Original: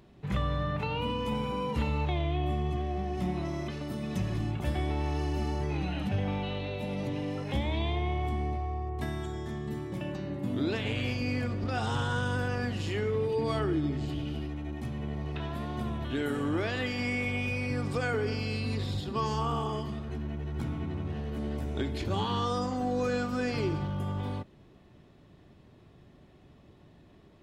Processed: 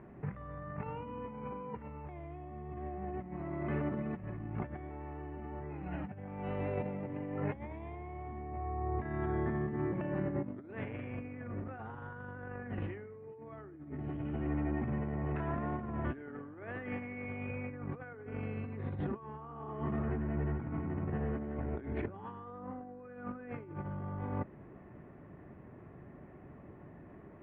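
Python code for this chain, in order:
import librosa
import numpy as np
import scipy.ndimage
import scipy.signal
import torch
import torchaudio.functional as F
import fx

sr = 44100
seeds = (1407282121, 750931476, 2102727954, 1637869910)

y = scipy.signal.sosfilt(scipy.signal.butter(6, 2100.0, 'lowpass', fs=sr, output='sos'), x)
y = fx.low_shelf(y, sr, hz=65.0, db=-10.0)
y = fx.over_compress(y, sr, threshold_db=-38.0, ratio=-0.5)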